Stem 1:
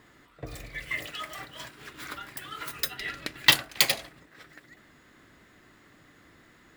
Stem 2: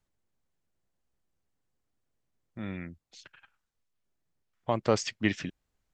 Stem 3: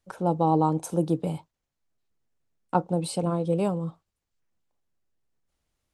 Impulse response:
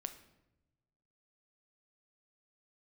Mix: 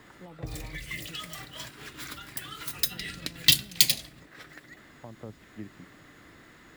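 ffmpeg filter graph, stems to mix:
-filter_complex "[0:a]volume=2dB,asplit=2[link_01][link_02];[link_02]volume=-8.5dB[link_03];[1:a]lowpass=1100,adelay=350,volume=-12dB[link_04];[2:a]alimiter=limit=-18.5dB:level=0:latency=1,volume=-18dB[link_05];[3:a]atrim=start_sample=2205[link_06];[link_03][link_06]afir=irnorm=-1:irlink=0[link_07];[link_01][link_04][link_05][link_07]amix=inputs=4:normalize=0,acrossover=split=270|3000[link_08][link_09][link_10];[link_09]acompressor=threshold=-44dB:ratio=6[link_11];[link_08][link_11][link_10]amix=inputs=3:normalize=0"

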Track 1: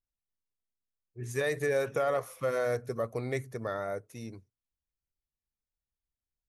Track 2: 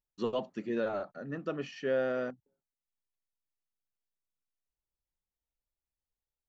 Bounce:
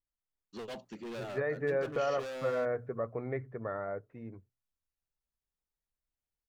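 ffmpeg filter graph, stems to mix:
ffmpeg -i stem1.wav -i stem2.wav -filter_complex "[0:a]lowpass=frequency=1900:width=0.5412,lowpass=frequency=1900:width=1.3066,volume=-2.5dB[link_01];[1:a]asoftclip=type=hard:threshold=-34.5dB,adynamicequalizer=threshold=0.00126:dfrequency=2800:dqfactor=0.7:tfrequency=2800:tqfactor=0.7:attack=5:release=100:ratio=0.375:range=4:mode=boostabove:tftype=highshelf,adelay=350,volume=-4.5dB[link_02];[link_01][link_02]amix=inputs=2:normalize=0,bandreject=frequency=60:width_type=h:width=6,bandreject=frequency=120:width_type=h:width=6" out.wav

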